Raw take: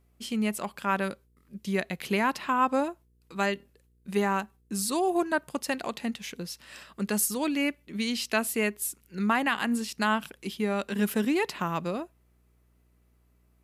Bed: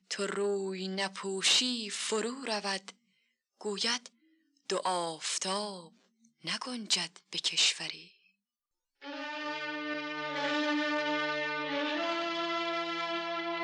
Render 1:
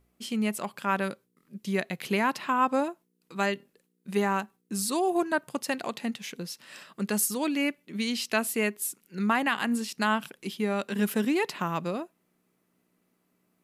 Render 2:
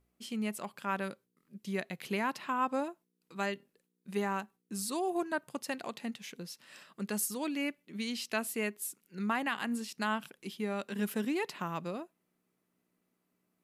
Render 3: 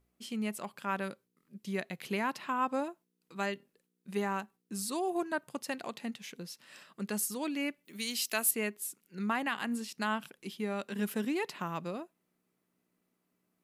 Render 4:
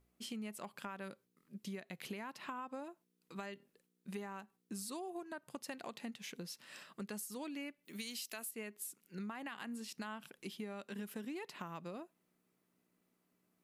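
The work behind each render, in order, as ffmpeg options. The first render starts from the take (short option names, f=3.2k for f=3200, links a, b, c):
-af "bandreject=f=60:t=h:w=4,bandreject=f=120:t=h:w=4"
-af "volume=-7dB"
-filter_complex "[0:a]asettb=1/sr,asplit=3[a][b][c];[a]atrim=end=7.854[d];[b]atrim=start=7.85:end=8.51,asetpts=PTS-STARTPTS,afade=t=in:d=0.004:c=qsin,afade=t=out:st=0.656:d=0.004:c=qsin,aemphasis=mode=production:type=bsi[e];[c]atrim=start=8.506[f];[d][e]acrossfade=d=0.004:c1=hsin:c2=qsin[g];[g][f]acrossfade=d=0.004:c1=qsin:c2=hsin"
-af "alimiter=level_in=0.5dB:limit=-24dB:level=0:latency=1:release=145,volume=-0.5dB,acompressor=threshold=-42dB:ratio=6"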